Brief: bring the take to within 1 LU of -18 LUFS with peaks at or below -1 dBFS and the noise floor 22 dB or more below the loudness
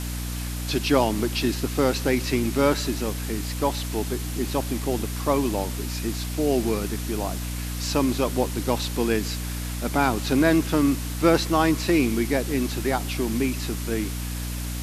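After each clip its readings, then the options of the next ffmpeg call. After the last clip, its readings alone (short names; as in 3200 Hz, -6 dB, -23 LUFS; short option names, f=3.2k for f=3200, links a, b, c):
hum 60 Hz; harmonics up to 300 Hz; hum level -28 dBFS; noise floor -30 dBFS; noise floor target -47 dBFS; loudness -24.5 LUFS; peak -5.0 dBFS; loudness target -18.0 LUFS
-> -af "bandreject=f=60:t=h:w=4,bandreject=f=120:t=h:w=4,bandreject=f=180:t=h:w=4,bandreject=f=240:t=h:w=4,bandreject=f=300:t=h:w=4"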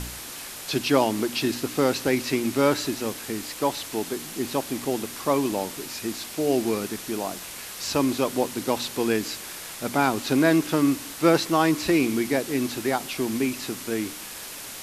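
hum none; noise floor -38 dBFS; noise floor target -48 dBFS
-> -af "afftdn=nr=10:nf=-38"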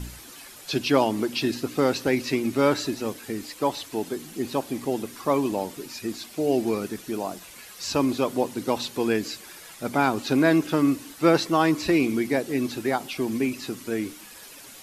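noise floor -45 dBFS; noise floor target -48 dBFS
-> -af "afftdn=nr=6:nf=-45"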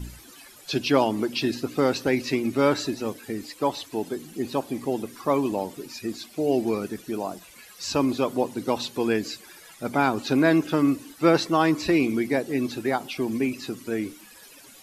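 noise floor -49 dBFS; loudness -25.5 LUFS; peak -5.5 dBFS; loudness target -18.0 LUFS
-> -af "volume=7.5dB,alimiter=limit=-1dB:level=0:latency=1"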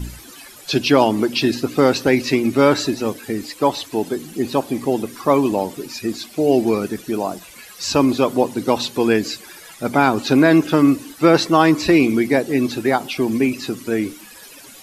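loudness -18.5 LUFS; peak -1.0 dBFS; noise floor -42 dBFS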